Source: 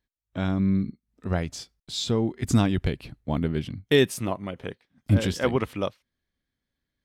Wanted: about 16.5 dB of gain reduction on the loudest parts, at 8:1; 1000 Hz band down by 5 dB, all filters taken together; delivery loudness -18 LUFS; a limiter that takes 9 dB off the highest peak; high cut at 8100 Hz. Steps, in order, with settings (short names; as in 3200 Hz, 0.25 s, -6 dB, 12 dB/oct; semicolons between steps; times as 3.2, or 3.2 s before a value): LPF 8100 Hz; bell 1000 Hz -7 dB; compressor 8:1, threshold -32 dBFS; gain +22.5 dB; limiter -6.5 dBFS